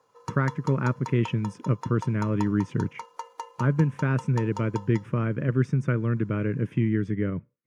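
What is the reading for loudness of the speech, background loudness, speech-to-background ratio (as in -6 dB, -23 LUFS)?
-26.5 LUFS, -41.5 LUFS, 15.0 dB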